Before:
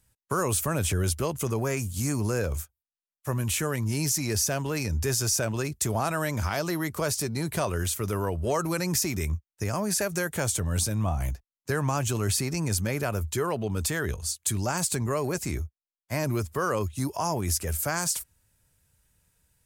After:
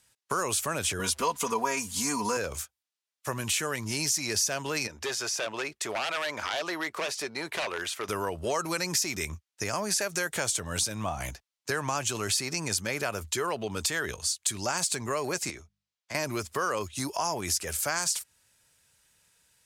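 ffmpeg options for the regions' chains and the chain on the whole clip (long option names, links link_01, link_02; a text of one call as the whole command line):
ffmpeg -i in.wav -filter_complex "[0:a]asettb=1/sr,asplit=3[link_01][link_02][link_03];[link_01]atrim=end=0.994[link_04];[link_02]atrim=start=0.99:end=2.37,asetpts=PTS-STARTPTS,afade=type=in:duration=0.004:curve=qsin,afade=type=out:start_time=1.376:duration=0.004:curve=qsin,equalizer=frequency=990:width_type=o:width=0.22:gain=14,aecho=1:1:4.2:0.81,atrim=end_sample=60858,aeval=exprs='val(0)*gte(abs(val(0)),0.00376)':channel_layout=same[link_05];[link_03]atrim=start=2.366[link_06];[link_04][link_05]acrossfade=duration=0.004:curve1=hsin:curve2=qsin[link_07];[link_07][link_06]acrossfade=duration=0.004:curve1=qsin:curve2=hsin,asettb=1/sr,asplit=3[link_08][link_09][link_10];[link_08]atrim=end=4.874[link_11];[link_09]atrim=start=4.87:end=8.09,asetpts=PTS-STARTPTS,afade=type=in:duration=0.004:curve=qsin,afade=type=out:start_time=3.216:duration=0.004:curve=qsin,bass=frequency=250:gain=-15,treble=frequency=4000:gain=-13,aeval=exprs='0.0501*(abs(mod(val(0)/0.0501+3,4)-2)-1)':channel_layout=same[link_12];[link_10]atrim=start=8.086[link_13];[link_11][link_12]acrossfade=duration=0.004:curve1=hsin:curve2=qsin[link_14];[link_14][link_13]acrossfade=duration=0.004:curve1=qsin:curve2=hsin,asettb=1/sr,asplit=3[link_15][link_16][link_17];[link_15]atrim=end=15.504[link_18];[link_16]atrim=start=15.5:end=16.15,asetpts=PTS-STARTPTS,afade=type=in:duration=0.004:curve=qsin,afade=type=out:start_time=0.646:duration=0.004:curve=qsin,lowpass=7500,bandreject=frequency=50:width_type=h:width=6,bandreject=frequency=100:width_type=h:width=6,bandreject=frequency=150:width_type=h:width=6,bandreject=frequency=200:width_type=h:width=6,acrossover=split=360|1700[link_19][link_20][link_21];[link_19]acompressor=threshold=-42dB:ratio=4[link_22];[link_20]acompressor=threshold=-50dB:ratio=4[link_23];[link_21]acompressor=threshold=-51dB:ratio=4[link_24];[link_22][link_23][link_24]amix=inputs=3:normalize=0[link_25];[link_17]atrim=start=16.146[link_26];[link_18][link_25]acrossfade=duration=0.004:curve1=hsin:curve2=qsin[link_27];[link_27][link_26]acrossfade=duration=0.004:curve1=qsin:curve2=hsin,lowpass=4500,aemphasis=mode=production:type=riaa,acompressor=threshold=-34dB:ratio=2,volume=4.5dB" out.wav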